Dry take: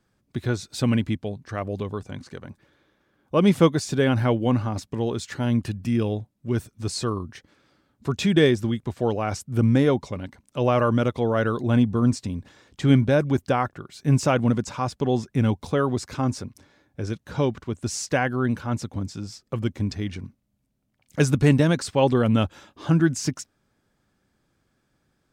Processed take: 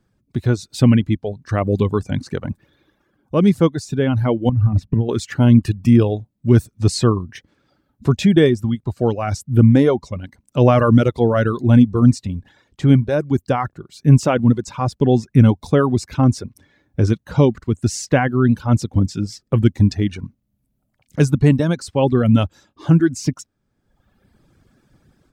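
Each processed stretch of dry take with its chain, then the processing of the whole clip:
4.49–5.09 s: compression 10:1, threshold -30 dBFS + tone controls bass +12 dB, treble -14 dB
whole clip: reverb removal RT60 1.1 s; bass shelf 410 Hz +8.5 dB; level rider; trim -1 dB

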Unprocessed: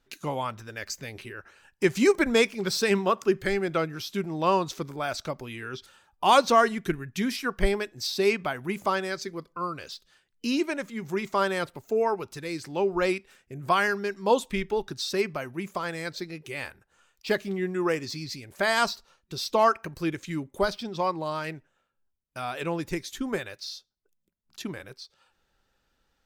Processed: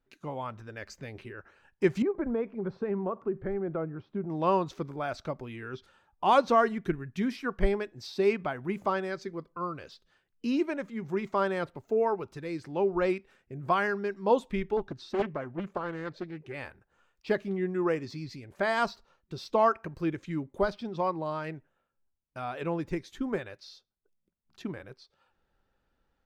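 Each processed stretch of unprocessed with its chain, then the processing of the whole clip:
2.02–4.30 s: low-pass 1.1 kHz + compression 2.5:1, threshold -27 dBFS
14.77–16.54 s: treble shelf 4.7 kHz -11 dB + loudspeaker Doppler distortion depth 0.6 ms
whole clip: low-pass 1.3 kHz 6 dB/octave; level rider gain up to 5.5 dB; trim -6.5 dB

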